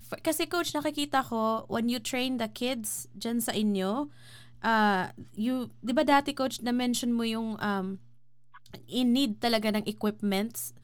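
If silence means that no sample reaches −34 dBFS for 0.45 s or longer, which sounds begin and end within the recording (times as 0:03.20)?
0:04.64–0:07.95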